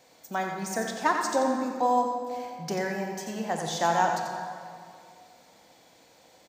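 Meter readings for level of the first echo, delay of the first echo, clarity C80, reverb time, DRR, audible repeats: -7.5 dB, 89 ms, 3.0 dB, 2.3 s, 2.0 dB, 1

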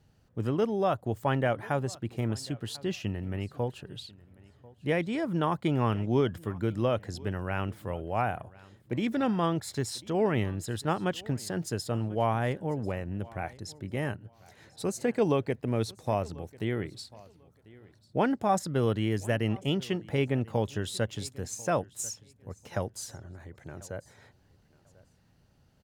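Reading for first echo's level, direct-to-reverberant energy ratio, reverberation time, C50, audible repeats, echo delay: -22.5 dB, none, none, none, 1, 1.043 s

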